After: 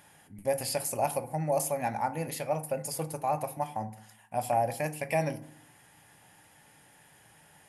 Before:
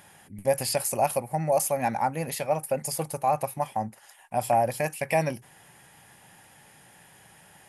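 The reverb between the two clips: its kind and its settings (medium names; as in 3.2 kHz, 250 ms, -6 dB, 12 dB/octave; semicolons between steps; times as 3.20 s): FDN reverb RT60 0.6 s, low-frequency decay 1.4×, high-frequency decay 0.5×, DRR 9.5 dB; trim -5 dB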